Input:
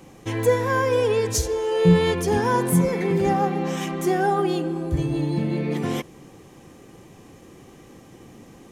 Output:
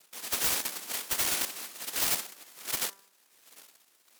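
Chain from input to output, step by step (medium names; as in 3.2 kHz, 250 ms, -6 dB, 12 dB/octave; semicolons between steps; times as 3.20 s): wah-wah 0.64 Hz 360–1800 Hz, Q 13; noise-vocoded speech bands 1; wide varispeed 2.08×; integer overflow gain 25.5 dB; de-hum 196.3 Hz, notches 9; trim +5 dB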